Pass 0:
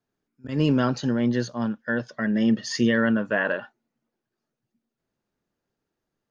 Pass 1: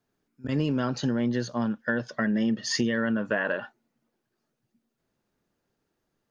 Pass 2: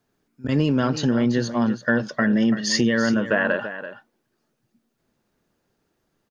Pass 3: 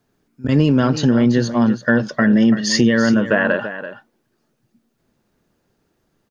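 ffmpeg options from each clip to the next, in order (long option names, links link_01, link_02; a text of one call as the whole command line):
ffmpeg -i in.wav -af "acompressor=threshold=-27dB:ratio=6,volume=4dB" out.wav
ffmpeg -i in.wav -af "aecho=1:1:335:0.251,volume=6dB" out.wav
ffmpeg -i in.wav -af "lowshelf=frequency=360:gain=3.5,volume=3.5dB" out.wav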